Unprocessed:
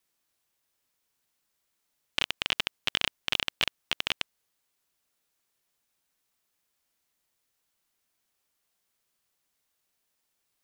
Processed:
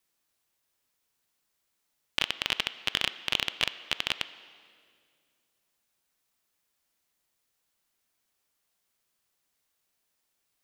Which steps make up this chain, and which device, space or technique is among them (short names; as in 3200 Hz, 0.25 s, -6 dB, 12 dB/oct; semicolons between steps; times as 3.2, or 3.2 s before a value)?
filtered reverb send (on a send: HPF 290 Hz 12 dB/oct + LPF 5200 Hz + reverb RT60 2.2 s, pre-delay 15 ms, DRR 13 dB)